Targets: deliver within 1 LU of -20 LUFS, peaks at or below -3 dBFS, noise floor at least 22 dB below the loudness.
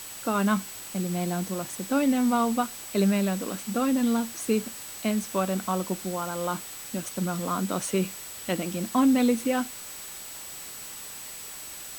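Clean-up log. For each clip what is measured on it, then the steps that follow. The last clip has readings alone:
steady tone 7.9 kHz; tone level -43 dBFS; noise floor -41 dBFS; noise floor target -50 dBFS; loudness -28.0 LUFS; peak level -12.5 dBFS; loudness target -20.0 LUFS
-> band-stop 7.9 kHz, Q 30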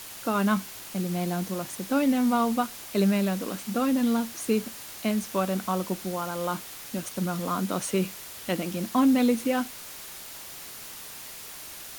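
steady tone not found; noise floor -42 dBFS; noise floor target -50 dBFS
-> noise print and reduce 8 dB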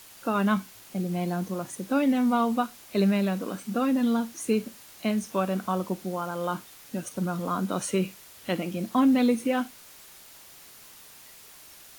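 noise floor -50 dBFS; loudness -27.5 LUFS; peak level -12.0 dBFS; loudness target -20.0 LUFS
-> trim +7.5 dB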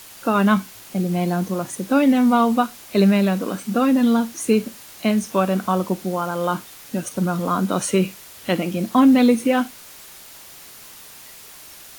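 loudness -20.0 LUFS; peak level -4.5 dBFS; noise floor -42 dBFS

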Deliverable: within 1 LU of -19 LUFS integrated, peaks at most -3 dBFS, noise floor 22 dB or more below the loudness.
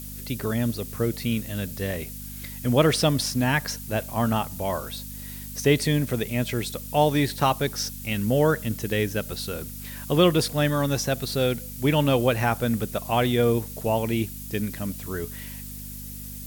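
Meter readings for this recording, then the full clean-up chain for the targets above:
hum 50 Hz; highest harmonic 250 Hz; hum level -36 dBFS; noise floor -37 dBFS; noise floor target -47 dBFS; loudness -25.0 LUFS; peak level -7.0 dBFS; loudness target -19.0 LUFS
-> de-hum 50 Hz, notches 5; noise reduction 10 dB, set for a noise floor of -37 dBFS; trim +6 dB; peak limiter -3 dBFS

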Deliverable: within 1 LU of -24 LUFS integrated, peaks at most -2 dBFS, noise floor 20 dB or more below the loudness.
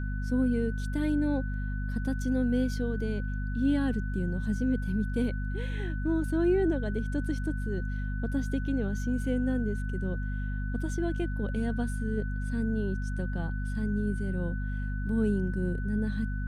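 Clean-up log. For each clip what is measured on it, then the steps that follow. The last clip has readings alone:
hum 50 Hz; highest harmonic 250 Hz; hum level -30 dBFS; steady tone 1.5 kHz; tone level -43 dBFS; loudness -31.0 LUFS; peak level -16.5 dBFS; loudness target -24.0 LUFS
-> de-hum 50 Hz, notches 5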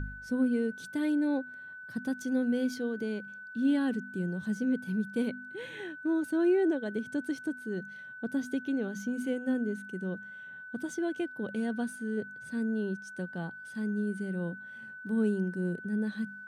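hum not found; steady tone 1.5 kHz; tone level -43 dBFS
-> band-stop 1.5 kHz, Q 30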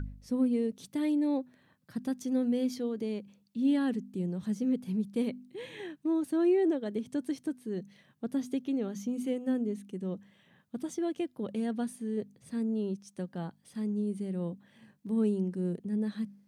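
steady tone not found; loudness -33.0 LUFS; peak level -19.0 dBFS; loudness target -24.0 LUFS
-> trim +9 dB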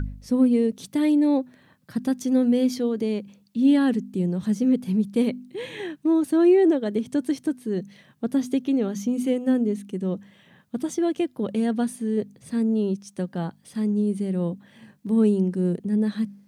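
loudness -24.0 LUFS; peak level -10.0 dBFS; noise floor -58 dBFS

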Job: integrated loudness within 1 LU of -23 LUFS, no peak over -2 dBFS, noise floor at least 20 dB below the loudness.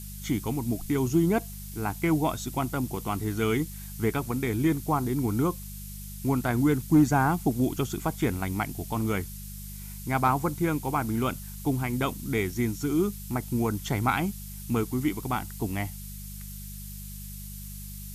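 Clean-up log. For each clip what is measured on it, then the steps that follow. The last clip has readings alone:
hum 50 Hz; highest harmonic 200 Hz; hum level -38 dBFS; noise floor -40 dBFS; noise floor target -48 dBFS; loudness -28.0 LUFS; peak level -11.0 dBFS; loudness target -23.0 LUFS
-> de-hum 50 Hz, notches 4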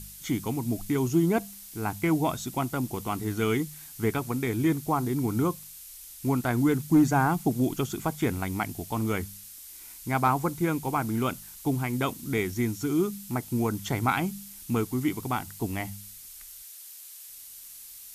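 hum not found; noise floor -46 dBFS; noise floor target -48 dBFS
-> noise print and reduce 6 dB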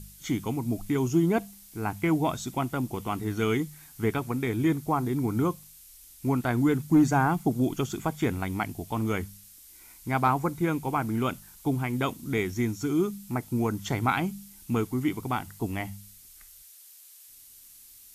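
noise floor -52 dBFS; loudness -28.5 LUFS; peak level -11.5 dBFS; loudness target -23.0 LUFS
-> trim +5.5 dB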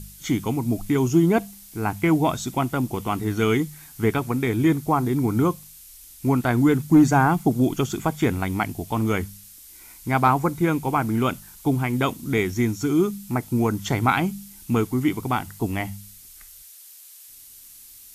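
loudness -23.0 LUFS; peak level -6.0 dBFS; noise floor -46 dBFS

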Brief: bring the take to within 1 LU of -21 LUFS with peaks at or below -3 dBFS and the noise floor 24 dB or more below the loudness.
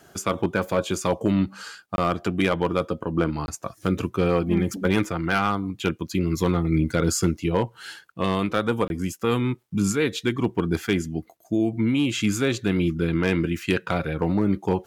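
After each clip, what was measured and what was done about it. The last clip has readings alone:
clipped samples 0.4%; clipping level -12.0 dBFS; dropouts 3; longest dropout 21 ms; loudness -24.5 LUFS; peak level -12.0 dBFS; loudness target -21.0 LUFS
-> clip repair -12 dBFS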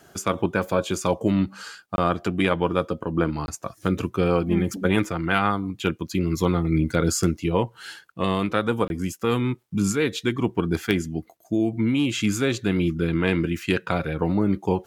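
clipped samples 0.0%; dropouts 3; longest dropout 21 ms
-> interpolate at 1.96/3.46/8.88 s, 21 ms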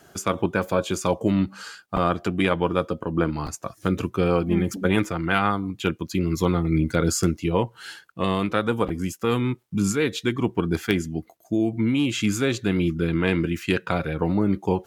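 dropouts 0; loudness -24.5 LUFS; peak level -4.5 dBFS; loudness target -21.0 LUFS
-> trim +3.5 dB; peak limiter -3 dBFS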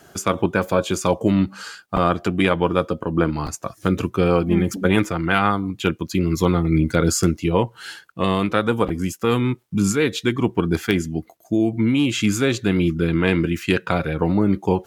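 loudness -21.0 LUFS; peak level -3.0 dBFS; noise floor -52 dBFS

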